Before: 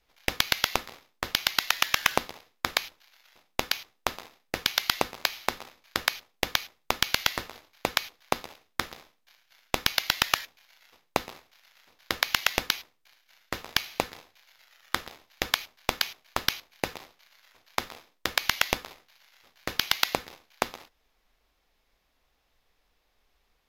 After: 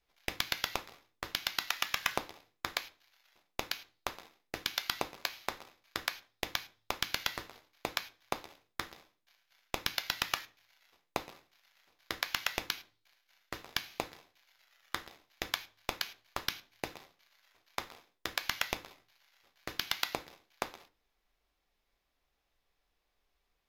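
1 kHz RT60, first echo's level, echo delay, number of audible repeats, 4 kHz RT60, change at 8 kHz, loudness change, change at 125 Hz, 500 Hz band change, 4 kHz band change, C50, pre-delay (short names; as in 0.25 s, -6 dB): 0.35 s, none, none, none, 0.40 s, -9.0 dB, -8.5 dB, -8.5 dB, -8.5 dB, -8.5 dB, 20.5 dB, 3 ms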